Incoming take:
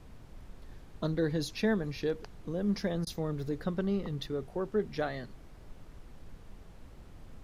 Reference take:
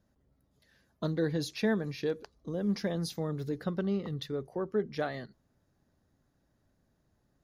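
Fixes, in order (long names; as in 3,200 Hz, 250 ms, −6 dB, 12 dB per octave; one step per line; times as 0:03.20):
repair the gap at 0:03.05, 16 ms
noise reduction from a noise print 22 dB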